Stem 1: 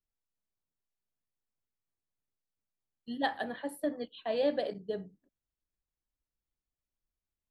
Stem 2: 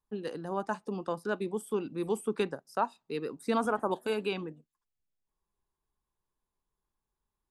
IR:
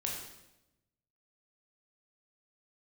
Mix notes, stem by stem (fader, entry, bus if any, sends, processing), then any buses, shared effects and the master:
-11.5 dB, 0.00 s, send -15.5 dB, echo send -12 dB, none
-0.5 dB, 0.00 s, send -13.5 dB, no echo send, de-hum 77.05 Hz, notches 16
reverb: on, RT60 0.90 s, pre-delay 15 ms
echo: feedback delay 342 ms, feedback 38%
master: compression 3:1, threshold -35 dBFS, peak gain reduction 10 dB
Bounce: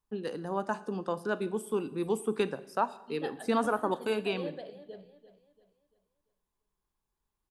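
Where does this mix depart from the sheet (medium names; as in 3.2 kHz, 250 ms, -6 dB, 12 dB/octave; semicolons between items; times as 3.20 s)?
stem 2: missing de-hum 77.05 Hz, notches 16; master: missing compression 3:1, threshold -35 dBFS, peak gain reduction 10 dB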